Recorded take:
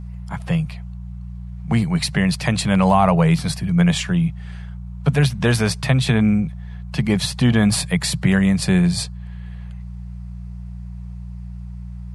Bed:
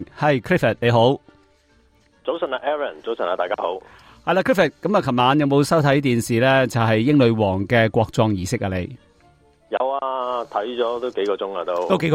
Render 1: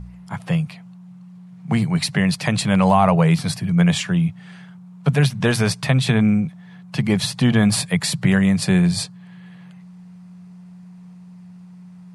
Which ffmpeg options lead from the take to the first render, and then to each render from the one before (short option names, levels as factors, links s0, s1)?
-af "bandreject=f=60:t=h:w=4,bandreject=f=120:t=h:w=4"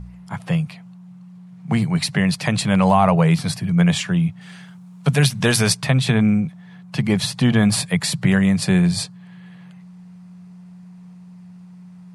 -filter_complex "[0:a]asettb=1/sr,asplit=3[s0][s1][s2];[s0]atrim=end=4.414[s3];[s1]atrim=start=4.41:end=5.77,asetpts=PTS-STARTPTS,afade=t=in:d=0.004:c=qsin,afade=t=out:st=1.356:d=0.004:c=qsin,highshelf=f=3400:g=9.5[s4];[s2]atrim=start=5.766[s5];[s3][s4]acrossfade=d=0.004:c1=hsin:c2=qsin[s6];[s6][s5]acrossfade=d=0.004:c1=qsin:c2=hsin"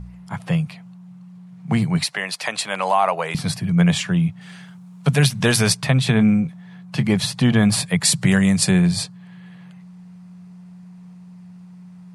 -filter_complex "[0:a]asettb=1/sr,asplit=3[s0][s1][s2];[s0]atrim=end=2.044[s3];[s1]atrim=start=2.04:end=3.35,asetpts=PTS-STARTPTS,afade=t=in:d=0.004:c=qsin,afade=t=out:st=1.306:d=0.004:c=qsin,highpass=580[s4];[s2]atrim=start=3.346[s5];[s3][s4]acrossfade=d=0.004:c1=hsin:c2=qsin[s6];[s6][s5]acrossfade=d=0.004:c1=qsin:c2=hsin,asettb=1/sr,asplit=3[s7][s8][s9];[s7]atrim=end=6.144[s10];[s8]atrim=start=6.14:end=7.11,asetpts=PTS-STARTPTS,afade=t=in:d=0.004:c=qsin,afade=t=out:st=0.966:d=0.004:c=qsin,asplit=2[s11][s12];[s12]adelay=23,volume=0.251[s13];[s11][s13]amix=inputs=2:normalize=0,atrim=end_sample=42777[s14];[s9]atrim=start=7.106[s15];[s10][s14]acrossfade=d=0.004:c1=hsin:c2=qsin[s16];[s16][s15]acrossfade=d=0.004:c1=qsin:c2=hsin,asettb=1/sr,asplit=3[s17][s18][s19];[s17]atrim=end=8.054[s20];[s18]atrim=start=8.05:end=8.71,asetpts=PTS-STARTPTS,afade=t=in:d=0.004:c=qsin,afade=t=out:st=0.656:d=0.004:c=qsin,equalizer=f=8000:w=0.68:g=9.5[s21];[s19]atrim=start=8.706[s22];[s20][s21]acrossfade=d=0.004:c1=hsin:c2=qsin[s23];[s23][s22]acrossfade=d=0.004:c1=qsin:c2=hsin"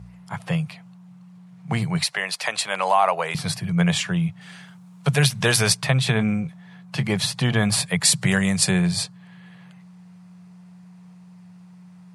-af "highpass=97,equalizer=f=250:t=o:w=0.81:g=-10"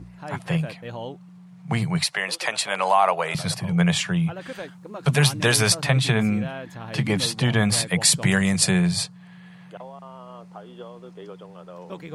-filter_complex "[1:a]volume=0.112[s0];[0:a][s0]amix=inputs=2:normalize=0"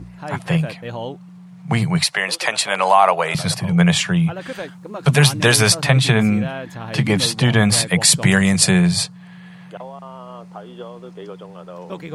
-af "volume=1.88,alimiter=limit=0.891:level=0:latency=1"